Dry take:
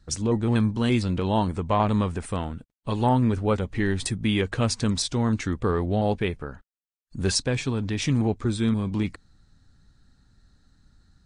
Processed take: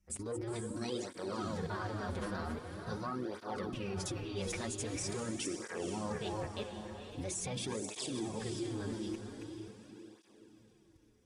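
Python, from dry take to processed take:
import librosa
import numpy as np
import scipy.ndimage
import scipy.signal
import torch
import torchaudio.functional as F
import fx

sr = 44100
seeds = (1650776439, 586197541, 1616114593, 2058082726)

y = fx.reverse_delay(x, sr, ms=238, wet_db=-8.5)
y = fx.high_shelf(y, sr, hz=5200.0, db=5.5)
y = fx.hum_notches(y, sr, base_hz=60, count=8)
y = y + 0.3 * np.pad(y, (int(5.5 * sr / 1000.0), 0))[:len(y)]
y = fx.formant_shift(y, sr, semitones=6)
y = fx.level_steps(y, sr, step_db=17)
y = fx.echo_diffused(y, sr, ms=492, feedback_pct=44, wet_db=-6.5)
y = fx.flanger_cancel(y, sr, hz=0.44, depth_ms=7.4)
y = y * 10.0 ** (-2.5 / 20.0)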